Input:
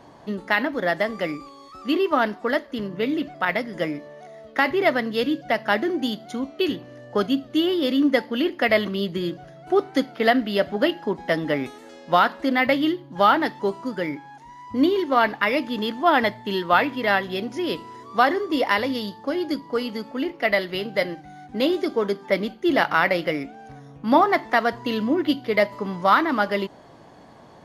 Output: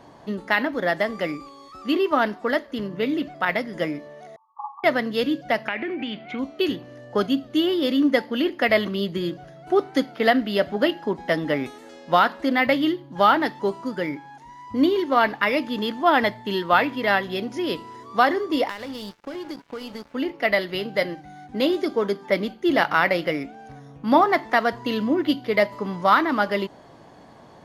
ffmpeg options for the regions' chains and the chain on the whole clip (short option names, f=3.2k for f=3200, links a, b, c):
-filter_complex "[0:a]asettb=1/sr,asplit=3[a][b][c];[a]atrim=end=4.364[d];[b]atrim=start=4.36:end=4.84,asetpts=PTS-STARTPTS,afade=t=in:d=0.004:c=qsin,afade=t=out:st=0.476:d=0.004:c=qsin,aeval=exprs='(mod(5.31*val(0)+1,2)-1)/5.31':c=same,asuperpass=centerf=970:order=20:qfactor=2.3[e];[c]atrim=start=4.836[f];[d][e]acrossfade=d=0.004:c1=hsin:c2=qsin[g];[g][f]acrossfade=d=0.004:c1=qsin:c2=hsin,asettb=1/sr,asplit=3[h][i][j];[h]atrim=end=5.684[k];[i]atrim=start=5.68:end=6.39,asetpts=PTS-STARTPTS,afade=t=in:d=0.004:c=qsin,afade=t=out:st=0.706:d=0.004:c=qsin,acompressor=threshold=-25dB:ratio=16:attack=3.2:release=140:knee=1:detection=peak,lowpass=f=2.4k:t=q:w=8.7[l];[j]atrim=start=6.386[m];[k][l]acrossfade=d=0.004:c1=hsin:c2=qsin[n];[n][m]acrossfade=d=0.004:c1=qsin:c2=hsin,asettb=1/sr,asplit=3[o][p][q];[o]atrim=end=18.694[r];[p]atrim=start=18.69:end=20.15,asetpts=PTS-STARTPTS,afade=t=in:d=0.004:c=qsin,afade=t=out:st=1.456:d=0.004:c=qsin,acompressor=threshold=-27dB:ratio=6:attack=3.2:release=140:knee=1:detection=peak,aeval=exprs='sgn(val(0))*max(abs(val(0))-0.01,0)':c=same[s];[q]atrim=start=20.146[t];[r][s]acrossfade=d=0.004:c1=hsin:c2=qsin[u];[u][t]acrossfade=d=0.004:c1=qsin:c2=hsin"